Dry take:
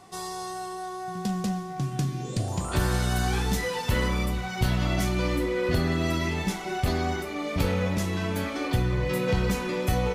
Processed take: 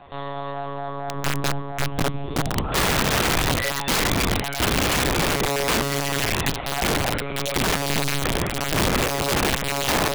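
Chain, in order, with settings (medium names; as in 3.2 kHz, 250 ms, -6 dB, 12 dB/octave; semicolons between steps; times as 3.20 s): monotone LPC vocoder at 8 kHz 140 Hz; integer overflow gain 21 dB; trim +5.5 dB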